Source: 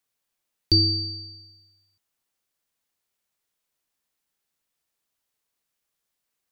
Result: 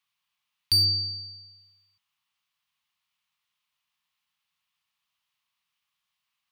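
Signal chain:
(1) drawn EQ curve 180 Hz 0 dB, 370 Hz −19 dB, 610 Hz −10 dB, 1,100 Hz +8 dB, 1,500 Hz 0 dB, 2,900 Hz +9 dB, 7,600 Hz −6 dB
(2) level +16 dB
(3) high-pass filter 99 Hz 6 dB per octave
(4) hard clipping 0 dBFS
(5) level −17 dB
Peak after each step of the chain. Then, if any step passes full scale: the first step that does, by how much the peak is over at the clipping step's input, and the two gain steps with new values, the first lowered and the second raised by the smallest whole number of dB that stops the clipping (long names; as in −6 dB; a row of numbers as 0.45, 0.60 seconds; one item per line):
−8.5, +7.5, +6.5, 0.0, −17.0 dBFS
step 2, 6.5 dB
step 2 +9 dB, step 5 −10 dB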